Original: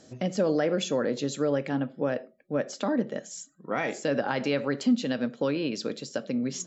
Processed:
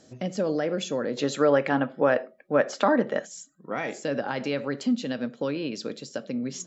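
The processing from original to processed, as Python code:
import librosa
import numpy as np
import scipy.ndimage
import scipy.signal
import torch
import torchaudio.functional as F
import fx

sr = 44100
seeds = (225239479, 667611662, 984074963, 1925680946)

y = fx.peak_eq(x, sr, hz=1200.0, db=13.0, octaves=3.0, at=(1.17, 3.25), fade=0.02)
y = y * 10.0 ** (-1.5 / 20.0)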